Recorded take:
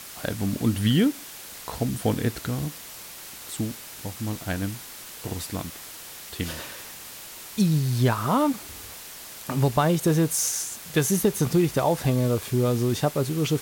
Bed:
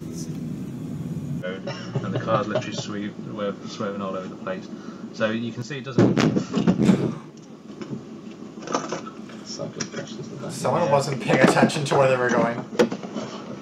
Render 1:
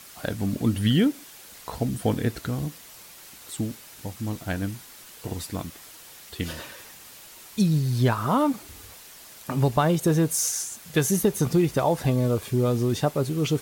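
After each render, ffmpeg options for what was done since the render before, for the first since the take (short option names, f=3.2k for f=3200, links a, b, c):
-af "afftdn=nr=6:nf=-41"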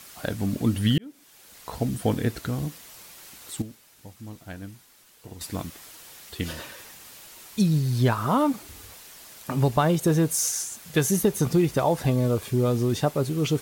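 -filter_complex "[0:a]asplit=4[a][b][c][d];[a]atrim=end=0.98,asetpts=PTS-STARTPTS,afade=t=out:st=0.976:d=0.004:c=hsin[e];[b]atrim=start=0.98:end=3.622,asetpts=PTS-STARTPTS,afade=t=in:d=0.84[f];[c]atrim=start=3.618:end=5.412,asetpts=PTS-STARTPTS,volume=-10dB[g];[d]atrim=start=5.408[h];[e][f]concat=n=2:v=0:a=1[i];[i][g]acrossfade=d=0.004:c1=hsin:c2=hsin[j];[j][h]acrossfade=d=0.004:c1=hsin:c2=hsin"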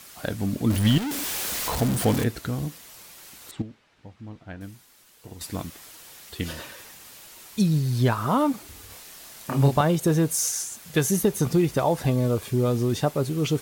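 -filter_complex "[0:a]asettb=1/sr,asplit=3[a][b][c];[a]atrim=end=0.704[d];[b]atrim=start=0.7:end=2.24,asetpts=PTS-STARTPTS,afade=t=in:d=0.004:c=qsin,afade=t=out:st=1.536:d=0.004:c=qsin,aeval=exprs='val(0)+0.5*0.0631*sgn(val(0))':c=same[e];[c]atrim=start=2.236[f];[d][e]acrossfade=d=0.004:c1=hsin:c2=qsin[g];[g][f]acrossfade=d=0.004:c1=qsin:c2=hsin,asettb=1/sr,asplit=3[h][i][j];[h]atrim=end=3.514[k];[i]atrim=start=3.51:end=4.61,asetpts=PTS-STARTPTS,afade=t=in:d=0.004:c=qsin,afade=t=out:st=1.096:d=0.004:c=qsin,lowpass=2.9k[l];[j]atrim=start=4.606[m];[k][l]acrossfade=d=0.004:c1=hsin:c2=qsin[n];[n][m]acrossfade=d=0.004:c1=qsin:c2=hsin,asettb=1/sr,asplit=3[o][p][q];[o]atrim=end=8.874[r];[p]atrim=start=8.87:end=9.81,asetpts=PTS-STARTPTS,afade=t=in:d=0.004:c=qsin,afade=t=out:st=0.936:d=0.004:c=qsin,asplit=2[s][t];[t]adelay=29,volume=-3dB[u];[s][u]amix=inputs=2:normalize=0,atrim=end_sample=41454[v];[q]atrim=start=9.806[w];[r][v]acrossfade=d=0.004:c1=hsin:c2=qsin[x];[x][w]acrossfade=d=0.004:c1=qsin:c2=hsin"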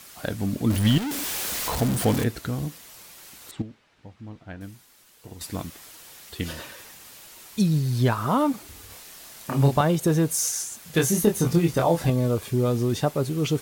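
-filter_complex "[0:a]asettb=1/sr,asplit=3[a][b][c];[a]atrim=end=10.914[d];[b]atrim=start=10.91:end=12.1,asetpts=PTS-STARTPTS,afade=t=in:d=0.004:c=qsin,afade=t=out:st=1.186:d=0.004:c=qsin,asplit=2[e][f];[f]adelay=24,volume=-4dB[g];[e][g]amix=inputs=2:normalize=0,atrim=end_sample=52479[h];[c]atrim=start=12.096[i];[d][h]acrossfade=d=0.004:c1=hsin:c2=qsin[j];[j][i]acrossfade=d=0.004:c1=qsin:c2=hsin"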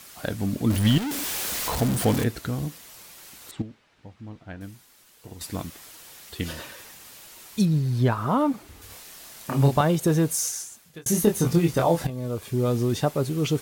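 -filter_complex "[0:a]asettb=1/sr,asplit=3[a][b][c];[a]atrim=end=7.654[d];[b]atrim=start=7.65:end=8.82,asetpts=PTS-STARTPTS,afade=t=in:d=0.004:c=qsin,afade=t=out:st=1.166:d=0.004:c=qsin,highshelf=f=3k:g=-8.5[e];[c]atrim=start=8.816[f];[d][e]acrossfade=d=0.004:c1=hsin:c2=qsin[g];[g][f]acrossfade=d=0.004:c1=qsin:c2=hsin,asplit=3[h][i][j];[h]atrim=end=11.06,asetpts=PTS-STARTPTS,afade=t=out:st=10.3:d=0.76[k];[i]atrim=start=11.06:end=12.07,asetpts=PTS-STARTPTS,afade=t=in:d=0.004:c=hsin,afade=t=out:st=1.006:d=0.004:c=hsin:silence=0.211349[l];[j]atrim=start=12.07,asetpts=PTS-STARTPTS,afade=t=in:d=0.65:silence=0.211349[m];[k][l][m]concat=n=3:v=0:a=1"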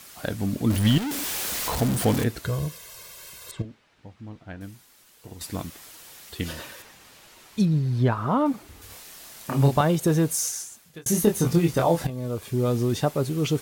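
-filter_complex "[0:a]asettb=1/sr,asplit=3[a][b][c];[a]atrim=end=2.444[d];[b]atrim=start=2.44:end=3.65,asetpts=PTS-STARTPTS,afade=t=in:d=0.004:c=qsin,afade=t=out:st=1.206:d=0.004:c=qsin,aecho=1:1:1.9:0.88,atrim=end_sample=53361[e];[c]atrim=start=3.646[f];[d][e]acrossfade=d=0.004:c1=hsin:c2=qsin[g];[g][f]acrossfade=d=0.004:c1=qsin:c2=hsin,asettb=1/sr,asplit=3[h][i][j];[h]atrim=end=6.824[k];[i]atrim=start=6.82:end=8.46,asetpts=PTS-STARTPTS,afade=t=in:d=0.004:c=qsin,afade=t=out:st=1.636:d=0.004:c=qsin,lowpass=f=3.8k:p=1[l];[j]atrim=start=8.456[m];[k][l]acrossfade=d=0.004:c1=hsin:c2=qsin[n];[n][m]acrossfade=d=0.004:c1=qsin:c2=hsin"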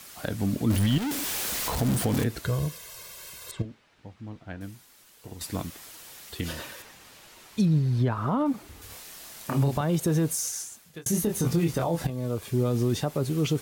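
-filter_complex "[0:a]alimiter=limit=-15dB:level=0:latency=1:release=52,acrossover=split=310[a][b];[b]acompressor=threshold=-29dB:ratio=2[c];[a][c]amix=inputs=2:normalize=0"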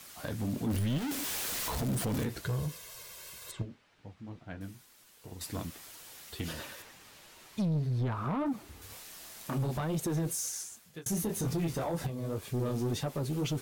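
-af "flanger=delay=6.2:depth=8.1:regen=-46:speed=2:shape=triangular,asoftclip=type=tanh:threshold=-26.5dB"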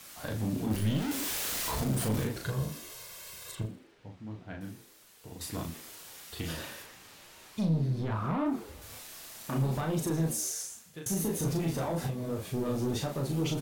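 -filter_complex "[0:a]asplit=2[a][b];[b]adelay=37,volume=-3.5dB[c];[a][c]amix=inputs=2:normalize=0,asplit=6[d][e][f][g][h][i];[e]adelay=80,afreqshift=74,volume=-17.5dB[j];[f]adelay=160,afreqshift=148,volume=-23dB[k];[g]adelay=240,afreqshift=222,volume=-28.5dB[l];[h]adelay=320,afreqshift=296,volume=-34dB[m];[i]adelay=400,afreqshift=370,volume=-39.6dB[n];[d][j][k][l][m][n]amix=inputs=6:normalize=0"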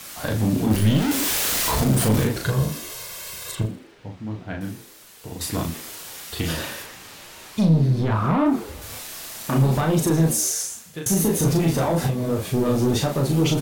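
-af "volume=11dB"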